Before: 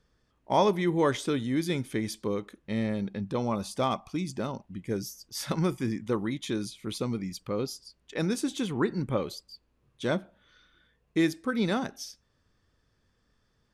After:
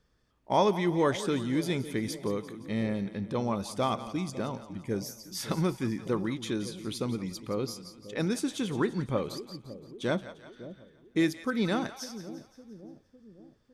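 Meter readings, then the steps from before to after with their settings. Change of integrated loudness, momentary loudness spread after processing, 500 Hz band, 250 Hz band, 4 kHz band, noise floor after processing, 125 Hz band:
-1.0 dB, 17 LU, -1.0 dB, -1.0 dB, -0.5 dB, -66 dBFS, -1.0 dB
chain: two-band feedback delay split 610 Hz, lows 556 ms, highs 173 ms, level -13.5 dB; trim -1 dB

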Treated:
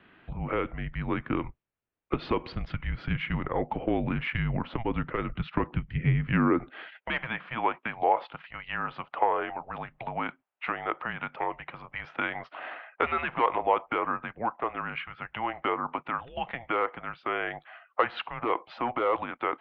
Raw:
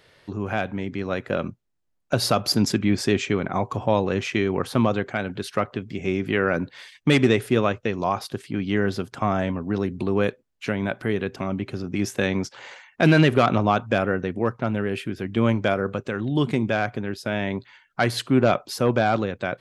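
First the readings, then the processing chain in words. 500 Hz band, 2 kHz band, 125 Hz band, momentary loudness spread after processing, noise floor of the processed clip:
-9.0 dB, -5.0 dB, -8.0 dB, 11 LU, -72 dBFS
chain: compression 3:1, threshold -22 dBFS, peak gain reduction 8 dB; high-pass sweep 88 Hz -> 980 Hz, 4.24–7.26 s; mistuned SSB -240 Hz 290–3200 Hz; transformer saturation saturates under 210 Hz

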